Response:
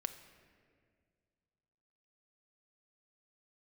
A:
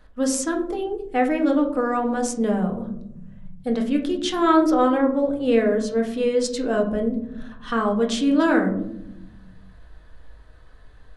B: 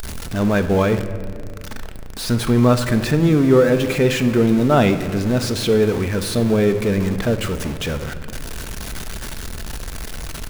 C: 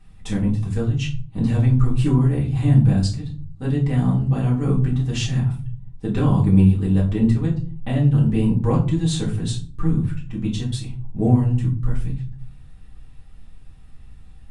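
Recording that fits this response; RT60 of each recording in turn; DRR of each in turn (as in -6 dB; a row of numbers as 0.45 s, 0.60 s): B; 0.85 s, 2.0 s, 0.40 s; 1.5 dB, 8.0 dB, -5.0 dB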